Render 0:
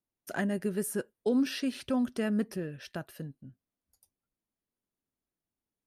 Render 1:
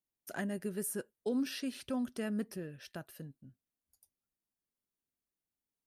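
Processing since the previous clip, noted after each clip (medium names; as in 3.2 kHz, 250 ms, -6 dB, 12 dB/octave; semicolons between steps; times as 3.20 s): treble shelf 6.4 kHz +7 dB; trim -6.5 dB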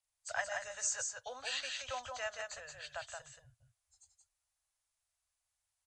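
knee-point frequency compression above 3 kHz 1.5:1; inverse Chebyshev band-stop 160–410 Hz, stop band 40 dB; delay 175 ms -4.5 dB; trim +5.5 dB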